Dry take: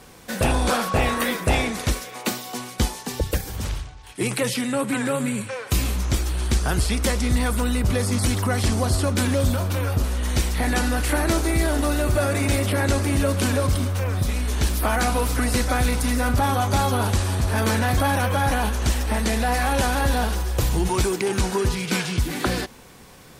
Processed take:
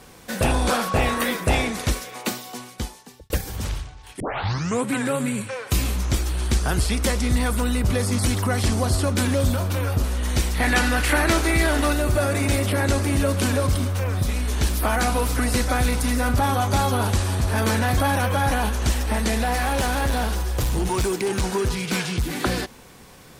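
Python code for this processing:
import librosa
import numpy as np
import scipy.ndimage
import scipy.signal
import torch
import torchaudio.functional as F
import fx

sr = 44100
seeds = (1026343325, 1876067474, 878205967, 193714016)

y = fx.peak_eq(x, sr, hz=2100.0, db=7.0, octaves=2.1, at=(10.6, 11.93))
y = fx.clip_hard(y, sr, threshold_db=-18.0, at=(19.44, 22.33))
y = fx.edit(y, sr, fx.fade_out_span(start_s=2.14, length_s=1.16),
    fx.tape_start(start_s=4.2, length_s=0.66), tone=tone)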